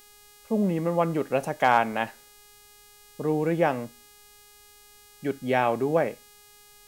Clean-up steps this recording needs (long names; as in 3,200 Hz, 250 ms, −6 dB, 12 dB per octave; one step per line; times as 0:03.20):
clipped peaks rebuilt −7.5 dBFS
hum removal 413.6 Hz, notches 39
downward expander −46 dBFS, range −21 dB